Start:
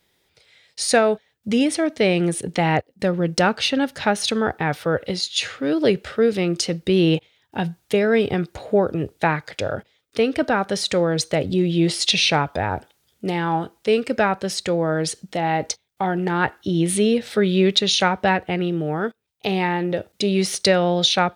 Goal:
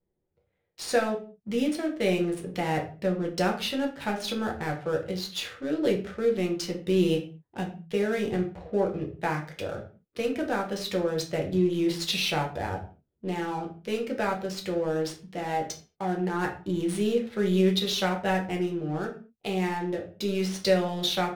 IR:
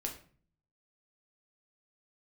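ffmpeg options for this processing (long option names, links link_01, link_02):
-filter_complex "[0:a]adynamicsmooth=sensitivity=7.5:basefreq=560[link_01];[1:a]atrim=start_sample=2205,afade=type=out:start_time=0.34:duration=0.01,atrim=end_sample=15435,asetrate=52920,aresample=44100[link_02];[link_01][link_02]afir=irnorm=-1:irlink=0,volume=-7.5dB"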